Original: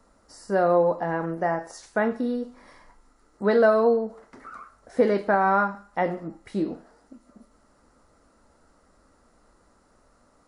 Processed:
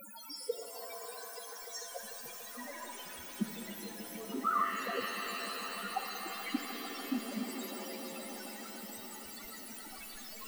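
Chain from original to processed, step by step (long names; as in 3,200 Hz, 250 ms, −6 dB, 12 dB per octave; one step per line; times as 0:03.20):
one scale factor per block 7 bits
Butterworth high-pass 180 Hz 72 dB per octave
in parallel at +2.5 dB: downward compressor 4 to 1, threshold −30 dBFS, peak gain reduction 13.5 dB
on the sum: gate with flip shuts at −21 dBFS, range −41 dB
bit-depth reduction 6 bits, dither triangular
spectral peaks only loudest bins 4
on a send: echo that builds up and dies away 147 ms, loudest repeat 5, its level −16.5 dB
on the sum: reverb with rising layers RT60 3.7 s, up +7 semitones, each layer −2 dB, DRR 5 dB
level +6 dB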